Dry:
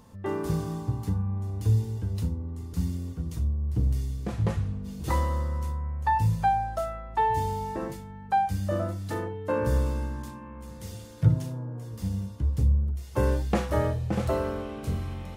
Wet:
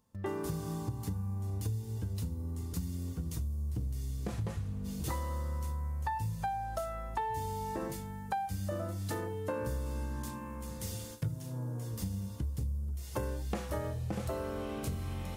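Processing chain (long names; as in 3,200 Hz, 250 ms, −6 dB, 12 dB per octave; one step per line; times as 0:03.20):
noise gate with hold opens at −38 dBFS
high-shelf EQ 5,600 Hz +8.5 dB
downward compressor, threshold −33 dBFS, peak gain reduction 17.5 dB
on a send: first difference + convolution reverb RT60 4.6 s, pre-delay 69 ms, DRR 27 dB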